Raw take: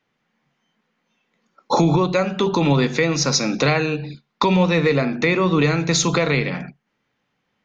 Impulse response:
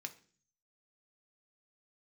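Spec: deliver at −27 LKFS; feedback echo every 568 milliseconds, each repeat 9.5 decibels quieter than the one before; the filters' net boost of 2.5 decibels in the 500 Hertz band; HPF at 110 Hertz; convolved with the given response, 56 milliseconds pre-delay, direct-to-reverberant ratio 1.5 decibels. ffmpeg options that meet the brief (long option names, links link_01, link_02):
-filter_complex "[0:a]highpass=110,equalizer=frequency=500:width_type=o:gain=3,aecho=1:1:568|1136|1704|2272:0.335|0.111|0.0365|0.012,asplit=2[link_01][link_02];[1:a]atrim=start_sample=2205,adelay=56[link_03];[link_02][link_03]afir=irnorm=-1:irlink=0,volume=1.5dB[link_04];[link_01][link_04]amix=inputs=2:normalize=0,volume=-11dB"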